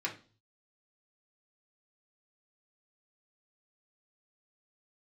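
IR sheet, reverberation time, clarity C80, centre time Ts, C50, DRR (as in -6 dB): 0.40 s, 18.5 dB, 15 ms, 12.0 dB, -2.5 dB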